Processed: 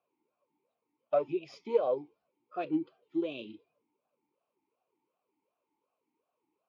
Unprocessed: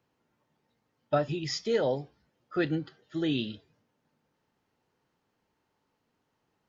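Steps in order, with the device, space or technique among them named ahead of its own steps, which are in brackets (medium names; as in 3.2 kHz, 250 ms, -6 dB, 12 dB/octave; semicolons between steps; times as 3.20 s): talk box (valve stage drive 18 dB, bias 0.6; talking filter a-u 2.7 Hz); trim +8 dB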